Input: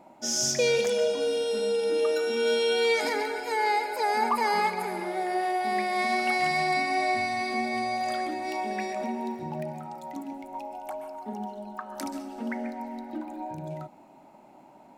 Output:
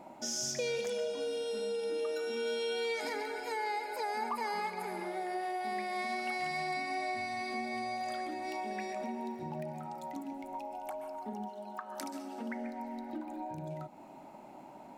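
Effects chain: 11.48–12.48 s: high-pass 520 Hz -> 190 Hz 6 dB/octave; compression 2:1, threshold -45 dBFS, peak gain reduction 13 dB; trim +2 dB

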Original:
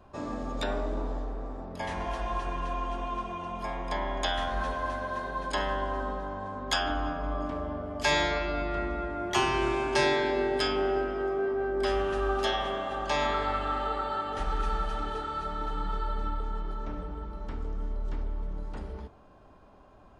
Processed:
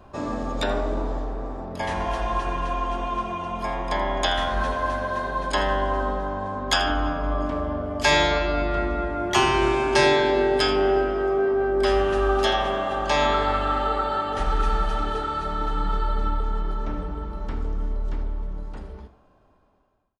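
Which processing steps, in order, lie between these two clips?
fade out at the end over 2.71 s; on a send: delay 82 ms -15 dB; on the sum: trim +6.5 dB

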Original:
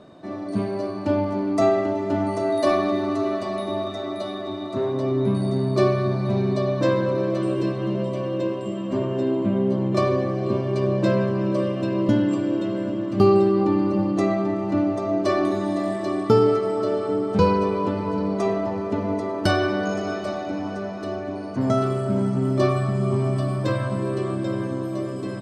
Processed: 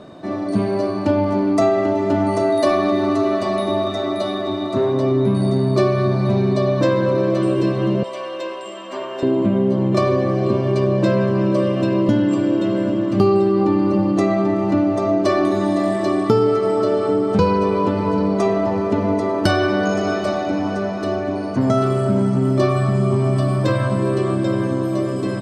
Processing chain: 8.03–9.23 s: high-pass 810 Hz 12 dB/octave; compression 2.5:1, threshold -22 dBFS, peak gain reduction 7.5 dB; trim +7.5 dB

